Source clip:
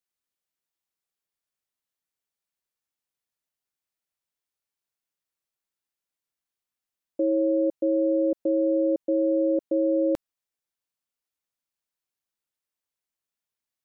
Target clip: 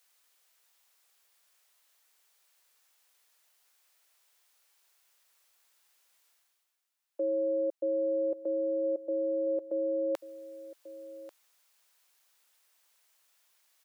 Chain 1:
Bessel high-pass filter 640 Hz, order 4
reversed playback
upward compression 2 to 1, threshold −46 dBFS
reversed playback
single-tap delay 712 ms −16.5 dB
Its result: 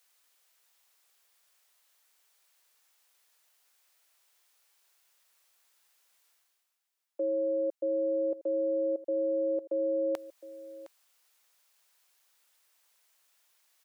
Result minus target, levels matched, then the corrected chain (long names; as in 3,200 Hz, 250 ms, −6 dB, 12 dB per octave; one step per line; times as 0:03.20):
echo 428 ms early
Bessel high-pass filter 640 Hz, order 4
reversed playback
upward compression 2 to 1, threshold −46 dBFS
reversed playback
single-tap delay 1,140 ms −16.5 dB